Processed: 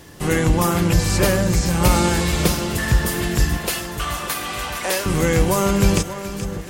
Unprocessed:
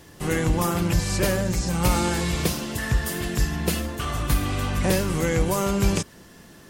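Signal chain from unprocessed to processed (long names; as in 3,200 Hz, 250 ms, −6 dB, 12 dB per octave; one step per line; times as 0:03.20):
0:03.57–0:05.06: high-pass filter 610 Hz 12 dB per octave
echo with a time of its own for lows and highs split 1,400 Hz, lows 594 ms, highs 427 ms, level −11.5 dB
level +5 dB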